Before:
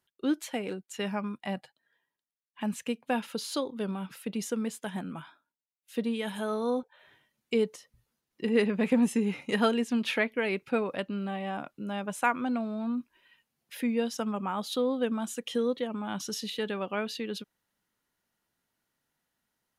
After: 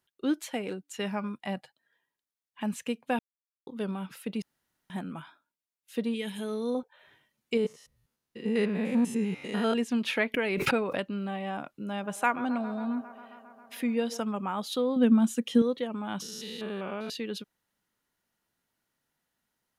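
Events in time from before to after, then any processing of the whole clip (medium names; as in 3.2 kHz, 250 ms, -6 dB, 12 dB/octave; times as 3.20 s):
0.80–1.30 s: de-hum 289 Hz, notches 21
3.19–3.67 s: mute
4.42–4.90 s: room tone
6.14–6.75 s: high-order bell 950 Hz -9.5 dB
7.57–9.75 s: spectrogram pixelated in time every 100 ms
10.34–11.00 s: swell ahead of each attack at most 27 dB/s
11.73–14.21 s: feedback echo behind a band-pass 135 ms, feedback 80%, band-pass 800 Hz, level -13.5 dB
14.96–15.62 s: peaking EQ 230 Hz +11.5 dB
16.22–17.10 s: spectrogram pixelated in time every 200 ms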